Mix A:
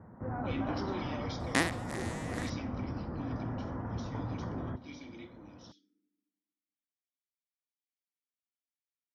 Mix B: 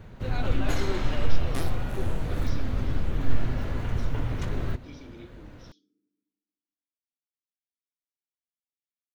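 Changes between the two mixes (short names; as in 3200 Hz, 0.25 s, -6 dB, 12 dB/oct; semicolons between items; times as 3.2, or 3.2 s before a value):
first sound: remove inverse Chebyshev low-pass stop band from 3800 Hz, stop band 60 dB; second sound -8.0 dB; master: remove speaker cabinet 140–9500 Hz, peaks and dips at 140 Hz -6 dB, 410 Hz -8 dB, 590 Hz -4 dB, 1900 Hz +9 dB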